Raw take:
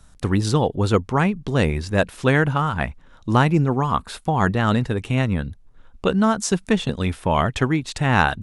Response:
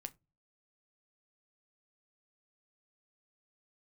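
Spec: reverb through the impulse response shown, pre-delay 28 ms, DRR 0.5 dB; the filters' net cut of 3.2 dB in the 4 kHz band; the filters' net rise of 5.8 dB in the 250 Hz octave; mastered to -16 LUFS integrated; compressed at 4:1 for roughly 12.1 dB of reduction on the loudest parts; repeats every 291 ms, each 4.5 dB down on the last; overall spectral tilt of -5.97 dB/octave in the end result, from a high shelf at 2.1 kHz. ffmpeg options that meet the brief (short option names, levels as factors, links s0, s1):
-filter_complex "[0:a]equalizer=f=250:t=o:g=7.5,highshelf=f=2100:g=4.5,equalizer=f=4000:t=o:g=-9,acompressor=threshold=0.0631:ratio=4,aecho=1:1:291|582|873|1164|1455|1746|2037|2328|2619:0.596|0.357|0.214|0.129|0.0772|0.0463|0.0278|0.0167|0.01,asplit=2[s0][s1];[1:a]atrim=start_sample=2205,adelay=28[s2];[s1][s2]afir=irnorm=-1:irlink=0,volume=1.5[s3];[s0][s3]amix=inputs=2:normalize=0,volume=2.24"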